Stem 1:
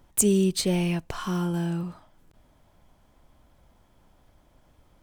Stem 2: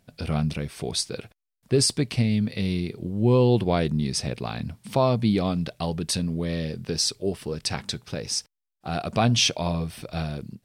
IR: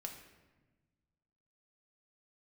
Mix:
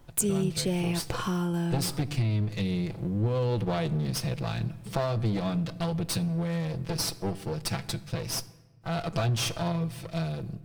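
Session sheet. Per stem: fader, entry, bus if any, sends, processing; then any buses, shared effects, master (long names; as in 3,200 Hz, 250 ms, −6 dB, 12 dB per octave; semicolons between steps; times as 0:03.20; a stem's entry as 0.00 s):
+2.0 dB, 0.00 s, no send, no processing
−4.5 dB, 0.00 s, send −6 dB, lower of the sound and its delayed copy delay 6 ms; parametric band 110 Hz +11 dB 0.74 octaves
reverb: on, RT60 1.2 s, pre-delay 4 ms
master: downward compressor 3 to 1, threshold −26 dBFS, peak gain reduction 9.5 dB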